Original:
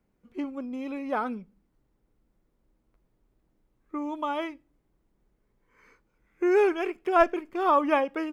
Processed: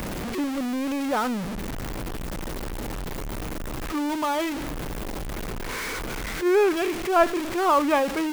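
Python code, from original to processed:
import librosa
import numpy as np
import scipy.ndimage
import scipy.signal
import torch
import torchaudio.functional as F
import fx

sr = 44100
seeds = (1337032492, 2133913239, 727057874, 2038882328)

y = x + 0.5 * 10.0 ** (-25.0 / 20.0) * np.sign(x)
y = fx.attack_slew(y, sr, db_per_s=180.0)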